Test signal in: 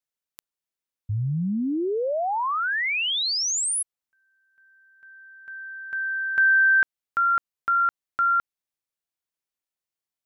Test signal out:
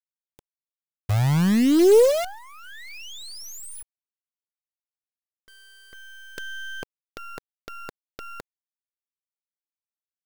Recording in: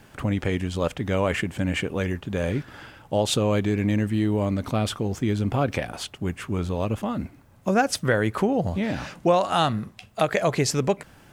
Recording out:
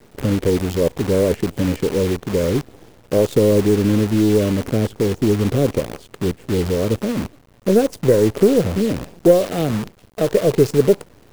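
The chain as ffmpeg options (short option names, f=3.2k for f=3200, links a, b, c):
-af "lowshelf=f=690:t=q:w=3:g=14,aeval=exprs='2.37*(cos(1*acos(clip(val(0)/2.37,-1,1)))-cos(1*PI/2))+0.119*(cos(3*acos(clip(val(0)/2.37,-1,1)))-cos(3*PI/2))+0.0335*(cos(4*acos(clip(val(0)/2.37,-1,1)))-cos(4*PI/2))+0.0299*(cos(5*acos(clip(val(0)/2.37,-1,1)))-cos(5*PI/2))+0.0335*(cos(8*acos(clip(val(0)/2.37,-1,1)))-cos(8*PI/2))':c=same,acrusher=bits=4:dc=4:mix=0:aa=0.000001,volume=-8.5dB"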